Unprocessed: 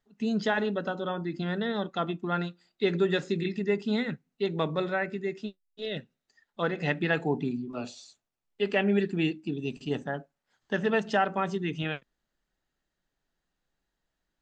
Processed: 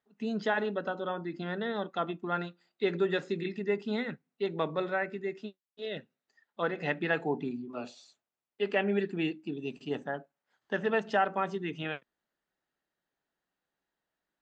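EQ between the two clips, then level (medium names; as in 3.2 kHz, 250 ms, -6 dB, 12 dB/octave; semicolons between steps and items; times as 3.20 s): high-pass 350 Hz 6 dB/octave; treble shelf 4 kHz -11.5 dB; 0.0 dB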